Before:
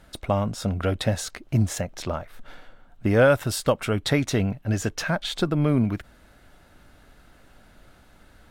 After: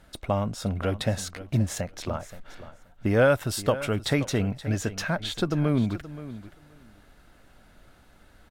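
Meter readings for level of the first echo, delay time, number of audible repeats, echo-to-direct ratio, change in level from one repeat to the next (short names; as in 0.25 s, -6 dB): -15.0 dB, 0.525 s, 2, -15.0 dB, -16.5 dB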